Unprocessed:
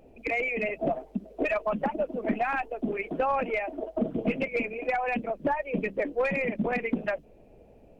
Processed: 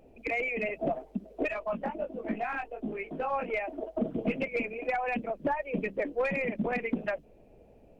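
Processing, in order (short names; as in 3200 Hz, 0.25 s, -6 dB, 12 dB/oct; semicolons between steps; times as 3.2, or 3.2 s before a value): 1.48–3.5 chorus 1.3 Hz, delay 17.5 ms, depth 4.4 ms; gain -2.5 dB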